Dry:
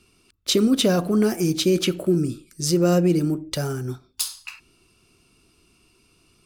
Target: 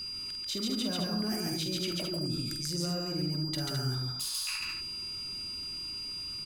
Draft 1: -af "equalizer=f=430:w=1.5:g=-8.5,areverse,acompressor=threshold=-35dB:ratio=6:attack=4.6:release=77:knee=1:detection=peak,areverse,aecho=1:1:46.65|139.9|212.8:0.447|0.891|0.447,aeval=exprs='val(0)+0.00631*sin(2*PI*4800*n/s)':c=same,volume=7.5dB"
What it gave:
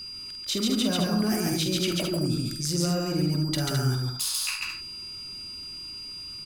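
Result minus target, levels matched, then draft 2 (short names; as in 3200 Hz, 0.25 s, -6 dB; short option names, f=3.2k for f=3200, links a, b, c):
compressor: peak gain reduction -8 dB
-af "equalizer=f=430:w=1.5:g=-8.5,areverse,acompressor=threshold=-44.5dB:ratio=6:attack=4.6:release=77:knee=1:detection=peak,areverse,aecho=1:1:46.65|139.9|212.8:0.447|0.891|0.447,aeval=exprs='val(0)+0.00631*sin(2*PI*4800*n/s)':c=same,volume=7.5dB"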